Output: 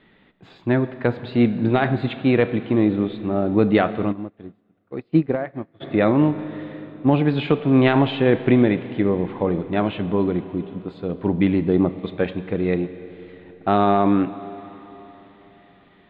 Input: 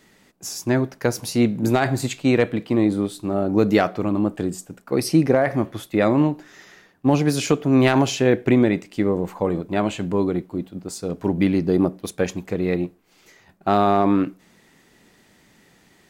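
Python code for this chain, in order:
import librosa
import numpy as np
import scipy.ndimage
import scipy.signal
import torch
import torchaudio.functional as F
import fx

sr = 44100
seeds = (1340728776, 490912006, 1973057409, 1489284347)

y = scipy.signal.sosfilt(scipy.signal.ellip(4, 1.0, 40, 3700.0, 'lowpass', fs=sr, output='sos'), x)
y = fx.low_shelf(y, sr, hz=370.0, db=2.5)
y = fx.rev_schroeder(y, sr, rt60_s=3.9, comb_ms=29, drr_db=12.5)
y = fx.upward_expand(y, sr, threshold_db=-31.0, expansion=2.5, at=(4.11, 5.8), fade=0.02)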